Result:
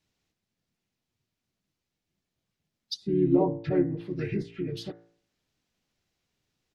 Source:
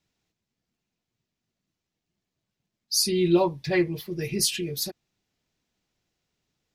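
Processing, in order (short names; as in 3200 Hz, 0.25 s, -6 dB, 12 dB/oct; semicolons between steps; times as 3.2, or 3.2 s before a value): harmoniser -4 st -4 dB; treble ducked by the level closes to 690 Hz, closed at -21 dBFS; de-hum 56.88 Hz, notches 38; gain -1.5 dB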